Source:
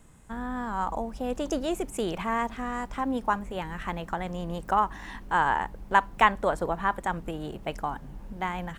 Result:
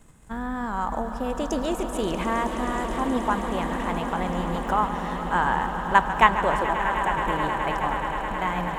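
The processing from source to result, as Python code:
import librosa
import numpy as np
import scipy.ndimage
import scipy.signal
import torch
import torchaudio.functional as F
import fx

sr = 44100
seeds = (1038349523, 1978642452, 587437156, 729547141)

p1 = fx.level_steps(x, sr, step_db=18)
p2 = x + (p1 * 10.0 ** (-1.0 / 20.0))
p3 = fx.fixed_phaser(p2, sr, hz=760.0, stages=8, at=(6.64, 7.18))
p4 = fx.echo_swell(p3, sr, ms=106, loudest=8, wet_db=-14.5)
p5 = fx.echo_warbled(p4, sr, ms=144, feedback_pct=80, rate_hz=2.8, cents=87, wet_db=-13.5)
y = p5 * 10.0 ** (-1.0 / 20.0)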